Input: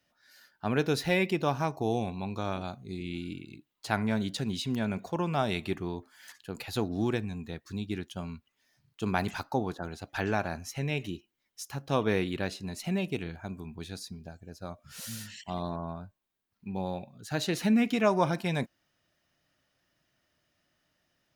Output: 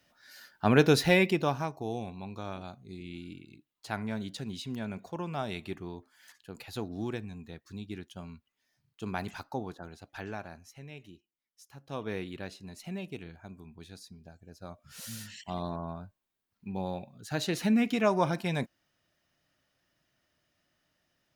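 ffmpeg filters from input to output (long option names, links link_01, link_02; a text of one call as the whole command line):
ffmpeg -i in.wav -af "volume=20dB,afade=type=out:start_time=0.86:duration=0.88:silence=0.251189,afade=type=out:start_time=9.6:duration=1.25:silence=0.354813,afade=type=in:start_time=11.68:duration=0.47:silence=0.446684,afade=type=in:start_time=14.11:duration=1.24:silence=0.446684" out.wav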